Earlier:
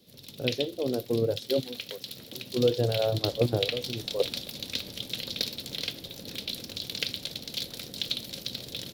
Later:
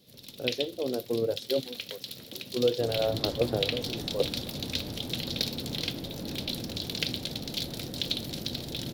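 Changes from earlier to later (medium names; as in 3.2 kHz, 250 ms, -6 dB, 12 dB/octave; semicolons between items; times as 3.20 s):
speech: add high-pass 260 Hz 6 dB/octave; second sound +10.5 dB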